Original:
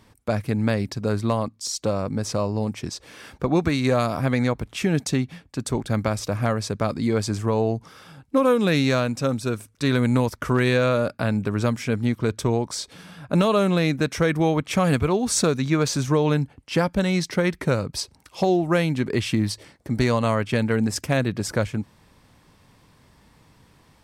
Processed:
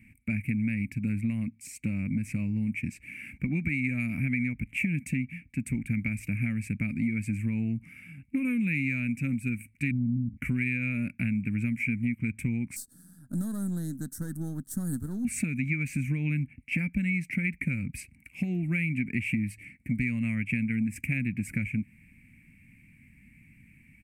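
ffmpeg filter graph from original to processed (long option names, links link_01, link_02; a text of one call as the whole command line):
ffmpeg -i in.wav -filter_complex "[0:a]asettb=1/sr,asplit=3[link_01][link_02][link_03];[link_01]atrim=end=9.914[link_04];[link_02]atrim=start=9.91:end=10.37,asetpts=PTS-STARTPTS,afade=type=in:duration=0.004:curve=qsin,afade=type=out:start_time=0.456:duration=0.004:curve=qsin,lowpass=frequency=190:width_type=q:width=1.5,bandreject=frequency=53.5:width_type=h:width=4,bandreject=frequency=107:width_type=h:width=4,bandreject=frequency=160.5:width_type=h:width=4,bandreject=frequency=214:width_type=h:width=4,bandreject=frequency=267.5:width_type=h:width=4[link_05];[link_03]atrim=start=10.366[link_06];[link_04][link_05]acrossfade=duration=0.004:curve1=hsin:curve2=qsin[link_07];[link_07][link_06]acrossfade=duration=0.004:curve1=qsin:curve2=hsin,asettb=1/sr,asplit=3[link_08][link_09][link_10];[link_08]atrim=end=12.764[link_11];[link_09]atrim=start=12.76:end=15.25,asetpts=PTS-STARTPTS,afade=type=in:duration=0.004:curve=qsin,afade=type=out:start_time=2.486:duration=0.004:curve=qsin,aeval=exprs='if(lt(val(0),0),0.447*val(0),val(0))':channel_layout=same,asuperstop=centerf=2400:order=8:qfactor=0.99,bass=frequency=250:gain=-10,treble=frequency=4000:gain=10[link_12];[link_10]atrim=start=15.246[link_13];[link_11][link_12]acrossfade=duration=0.004:curve1=hsin:curve2=qsin[link_14];[link_14][link_13]acrossfade=duration=0.004:curve1=qsin:curve2=hsin,firequalizer=gain_entry='entry(110,0);entry(240,5);entry(410,-24);entry(1100,-28);entry(2300,15);entry(3400,-24);entry(5400,-23);entry(8200,-6);entry(13000,-3)':delay=0.05:min_phase=1,acompressor=threshold=-24dB:ratio=6,volume=-1.5dB" out.wav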